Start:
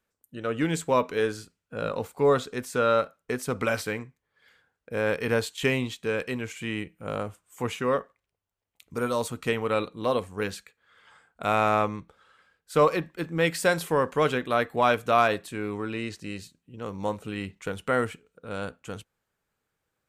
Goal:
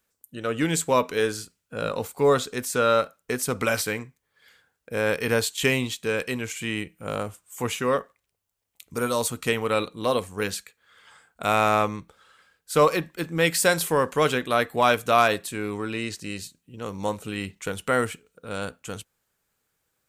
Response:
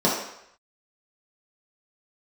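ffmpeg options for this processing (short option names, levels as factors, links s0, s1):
-af "highshelf=f=4200:g=10.5,volume=1.19"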